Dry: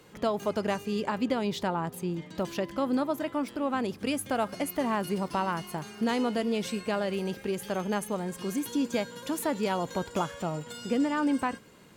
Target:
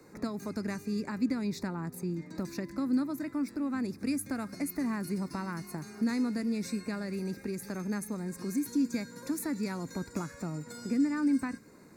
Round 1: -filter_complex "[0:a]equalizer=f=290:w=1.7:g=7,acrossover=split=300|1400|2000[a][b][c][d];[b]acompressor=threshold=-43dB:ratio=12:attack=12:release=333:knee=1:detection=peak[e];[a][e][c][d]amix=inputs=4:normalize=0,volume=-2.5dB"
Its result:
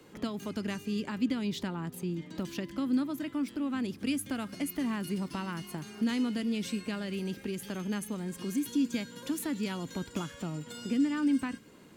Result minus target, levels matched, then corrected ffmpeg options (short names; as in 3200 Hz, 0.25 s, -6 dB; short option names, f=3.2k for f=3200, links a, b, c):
4000 Hz band +6.0 dB
-filter_complex "[0:a]asuperstop=centerf=3100:order=4:qfactor=1.9,equalizer=f=290:w=1.7:g=7,acrossover=split=300|1400|2000[a][b][c][d];[b]acompressor=threshold=-43dB:ratio=12:attack=12:release=333:knee=1:detection=peak[e];[a][e][c][d]amix=inputs=4:normalize=0,volume=-2.5dB"